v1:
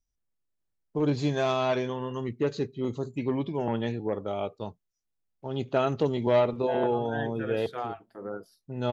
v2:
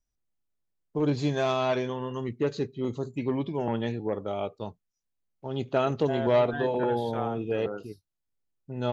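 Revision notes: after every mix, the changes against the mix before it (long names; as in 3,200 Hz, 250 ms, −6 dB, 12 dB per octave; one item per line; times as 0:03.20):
second voice: entry −0.60 s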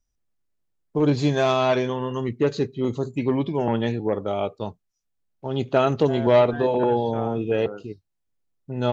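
first voice +6.0 dB
second voice: add high-frequency loss of the air 150 metres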